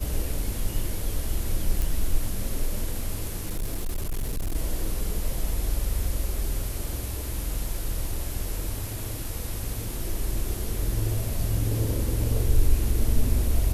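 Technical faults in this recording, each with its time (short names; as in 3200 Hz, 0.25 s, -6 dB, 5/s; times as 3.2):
1.82 pop
3.4–4.56 clipped -24 dBFS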